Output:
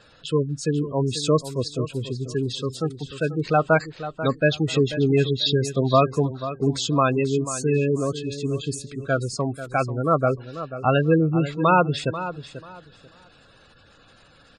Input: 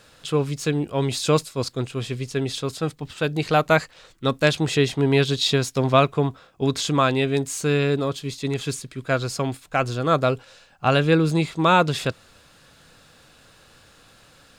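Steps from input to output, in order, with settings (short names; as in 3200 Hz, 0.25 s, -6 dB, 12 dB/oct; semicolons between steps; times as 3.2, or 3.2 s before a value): spectral gate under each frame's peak -15 dB strong; feedback echo 0.489 s, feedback 22%, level -12.5 dB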